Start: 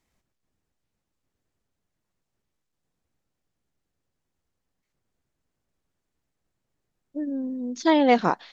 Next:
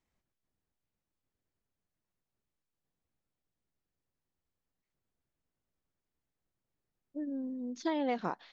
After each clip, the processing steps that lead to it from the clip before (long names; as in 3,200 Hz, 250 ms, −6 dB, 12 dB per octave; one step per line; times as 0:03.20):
high-shelf EQ 6,100 Hz −7.5 dB
downward compressor 6 to 1, threshold −21 dBFS, peak gain reduction 8 dB
level −8 dB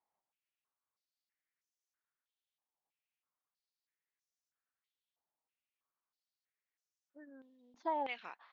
band-pass on a step sequencer 3.1 Hz 850–6,000 Hz
level +6.5 dB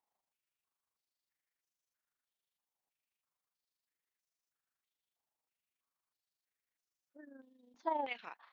amplitude modulation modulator 25 Hz, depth 40%
level +2.5 dB